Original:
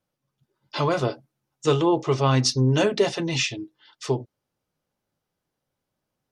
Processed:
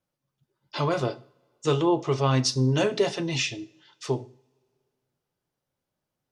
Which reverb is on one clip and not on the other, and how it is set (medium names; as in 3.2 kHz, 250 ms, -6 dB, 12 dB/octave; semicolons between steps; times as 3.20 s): two-slope reverb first 0.46 s, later 2.2 s, from -25 dB, DRR 13 dB; trim -3 dB